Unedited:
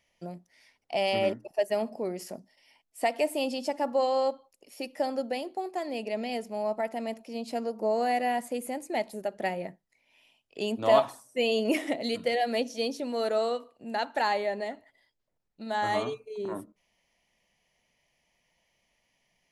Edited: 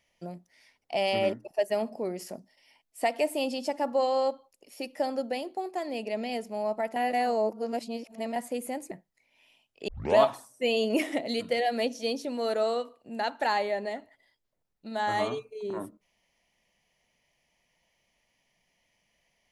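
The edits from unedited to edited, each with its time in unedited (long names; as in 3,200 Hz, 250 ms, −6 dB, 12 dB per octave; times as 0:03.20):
0:06.96–0:08.36: reverse
0:08.91–0:09.66: remove
0:10.63: tape start 0.29 s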